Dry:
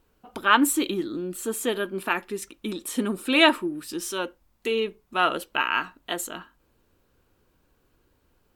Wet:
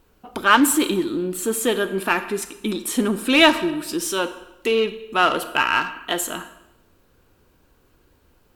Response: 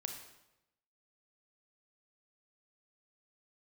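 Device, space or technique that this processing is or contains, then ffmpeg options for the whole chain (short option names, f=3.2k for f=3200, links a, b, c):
saturated reverb return: -filter_complex "[0:a]asplit=2[a][b];[1:a]atrim=start_sample=2205[c];[b][c]afir=irnorm=-1:irlink=0,asoftclip=type=tanh:threshold=-25.5dB,volume=0.5dB[d];[a][d]amix=inputs=2:normalize=0,volume=2dB"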